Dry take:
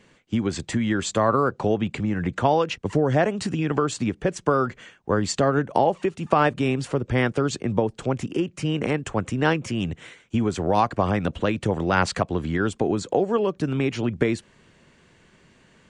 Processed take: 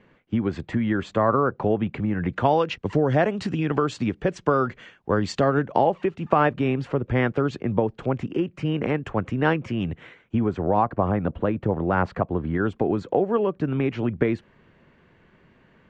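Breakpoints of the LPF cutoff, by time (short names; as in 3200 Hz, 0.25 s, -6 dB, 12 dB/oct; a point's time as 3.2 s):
1.99 s 2100 Hz
2.6 s 4100 Hz
5.37 s 4100 Hz
6.33 s 2500 Hz
10.01 s 2500 Hz
10.82 s 1300 Hz
12.39 s 1300 Hz
12.8 s 2200 Hz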